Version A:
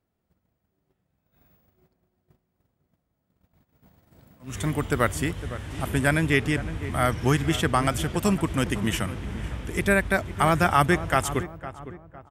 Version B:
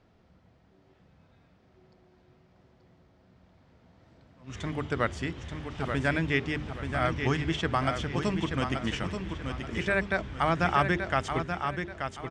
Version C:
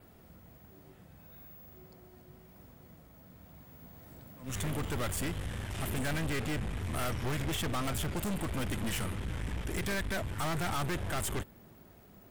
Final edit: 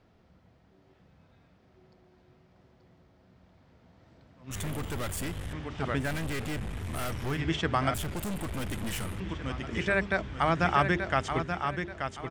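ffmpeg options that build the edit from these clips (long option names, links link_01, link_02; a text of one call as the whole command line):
ffmpeg -i take0.wav -i take1.wav -i take2.wav -filter_complex "[2:a]asplit=3[link_01][link_02][link_03];[1:a]asplit=4[link_04][link_05][link_06][link_07];[link_04]atrim=end=4.512[link_08];[link_01]atrim=start=4.508:end=5.532[link_09];[link_05]atrim=start=5.528:end=6.12[link_10];[link_02]atrim=start=5.96:end=7.42[link_11];[link_06]atrim=start=7.26:end=7.942[link_12];[link_03]atrim=start=7.938:end=9.202[link_13];[link_07]atrim=start=9.198[link_14];[link_08][link_09]acrossfade=duration=0.004:curve1=hsin:curve2=hsin[link_15];[link_15][link_10]acrossfade=duration=0.004:curve1=hsin:curve2=hsin[link_16];[link_16][link_11]acrossfade=duration=0.16:curve1=tri:curve2=tri[link_17];[link_17][link_12]acrossfade=duration=0.16:curve1=tri:curve2=tri[link_18];[link_18][link_13]acrossfade=duration=0.004:curve1=hsin:curve2=hsin[link_19];[link_19][link_14]acrossfade=duration=0.004:curve1=hsin:curve2=hsin" out.wav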